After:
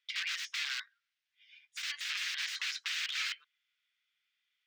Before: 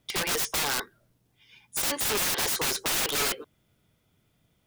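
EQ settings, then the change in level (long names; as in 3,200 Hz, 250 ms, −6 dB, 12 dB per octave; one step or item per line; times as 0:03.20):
inverse Chebyshev high-pass filter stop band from 690 Hz, stop band 50 dB
high-frequency loss of the air 190 metres
0.0 dB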